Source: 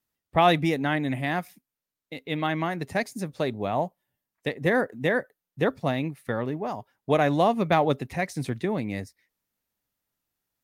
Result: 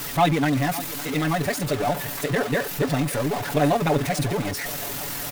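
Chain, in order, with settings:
converter with a step at zero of −22.5 dBFS
comb filter 7 ms, depth 89%
tempo change 2×
feedback echo with a high-pass in the loop 557 ms, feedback 77%, high-pass 360 Hz, level −14 dB
level −3.5 dB

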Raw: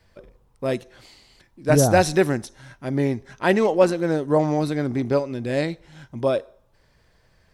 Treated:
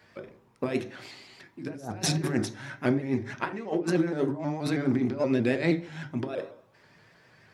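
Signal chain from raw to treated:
high-pass filter 69 Hz
high-shelf EQ 4,100 Hz −8.5 dB
compressor whose output falls as the input rises −26 dBFS, ratio −0.5
convolution reverb RT60 0.40 s, pre-delay 3 ms, DRR 8 dB
pitch modulation by a square or saw wave saw up 6.3 Hz, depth 100 cents

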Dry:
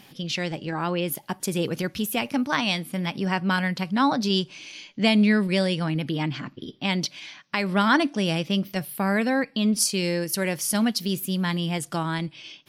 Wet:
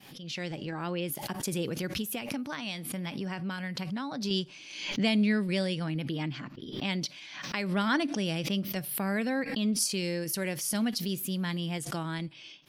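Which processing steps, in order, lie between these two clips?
fade in at the beginning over 0.50 s
0:02.01–0:04.31: downward compressor, threshold −25 dBFS, peak gain reduction 9 dB
dynamic equaliser 970 Hz, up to −4 dB, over −37 dBFS, Q 1.4
background raised ahead of every attack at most 61 dB per second
level −6.5 dB

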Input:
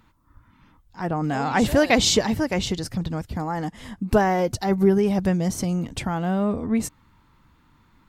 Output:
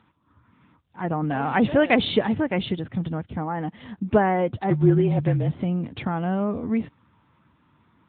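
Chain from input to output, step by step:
0:04.70–0:05.55: frequency shifter −38 Hz
AMR narrowband 10.2 kbit/s 8,000 Hz

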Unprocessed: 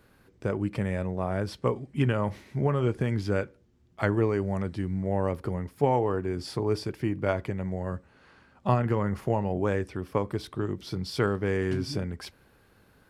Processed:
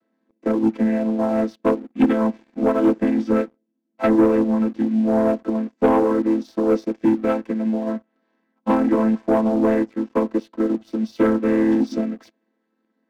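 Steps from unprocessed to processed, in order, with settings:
channel vocoder with a chord as carrier minor triad, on A3
leveller curve on the samples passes 2
expander for the loud parts 1.5 to 1, over −38 dBFS
level +6 dB

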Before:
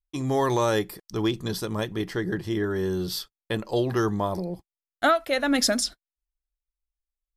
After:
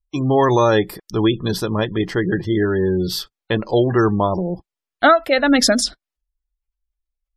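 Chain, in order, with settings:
high-shelf EQ 6,800 Hz −5.5 dB
gate on every frequency bin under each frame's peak −30 dB strong
level +8.5 dB

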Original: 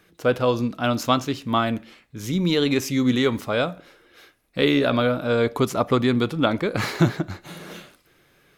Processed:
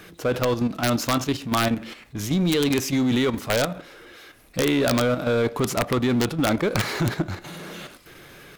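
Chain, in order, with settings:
output level in coarse steps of 12 dB
power curve on the samples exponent 0.7
wrap-around overflow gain 13 dB

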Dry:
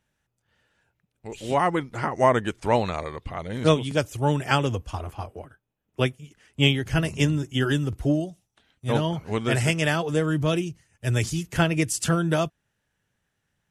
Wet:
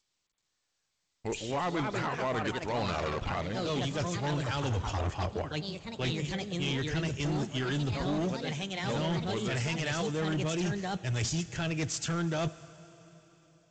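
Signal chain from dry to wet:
downward expander −45 dBFS
reversed playback
downward compressor 12 to 1, threshold −34 dBFS, peak gain reduction 22 dB
reversed playback
high-shelf EQ 2,900 Hz +7 dB
delay with pitch and tempo change per echo 474 ms, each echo +3 semitones, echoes 2, each echo −6 dB
in parallel at −1.5 dB: brickwall limiter −30 dBFS, peak gain reduction 11 dB
on the sum: convolution reverb RT60 4.1 s, pre-delay 5 ms, DRR 17.5 dB
hard clipping −29 dBFS, distortion −13 dB
level +2.5 dB
G.722 64 kbit/s 16,000 Hz

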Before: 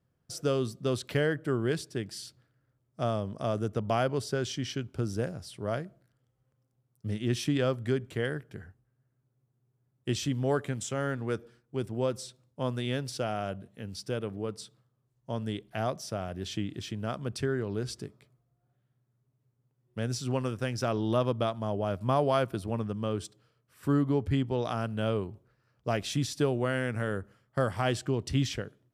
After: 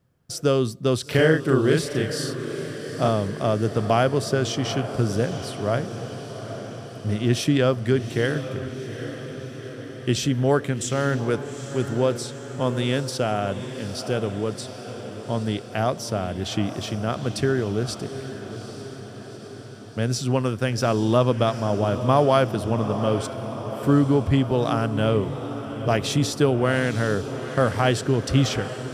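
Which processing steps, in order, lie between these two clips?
0:01.06–0:03.08: double-tracking delay 38 ms −2 dB
feedback delay with all-pass diffusion 822 ms, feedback 64%, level −11 dB
level +8 dB

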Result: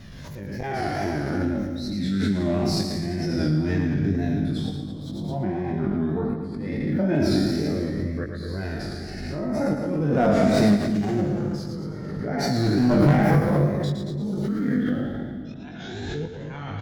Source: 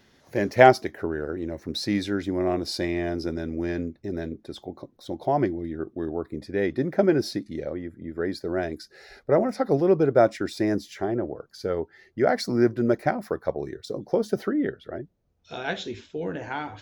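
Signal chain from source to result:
peak hold with a decay on every bin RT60 1.43 s
hum removal 54.94 Hz, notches 4
tape wow and flutter 91 cents
low shelf with overshoot 270 Hz +12.5 dB, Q 1.5
volume swells 701 ms
flanger 0.12 Hz, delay 1.6 ms, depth 5.6 ms, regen +34%
hard clipping −16 dBFS, distortion −17 dB
double-tracking delay 20 ms −4.5 dB
echo with a time of its own for lows and highs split 390 Hz, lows 268 ms, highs 113 ms, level −6 dB
background raised ahead of every attack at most 22 dB per second

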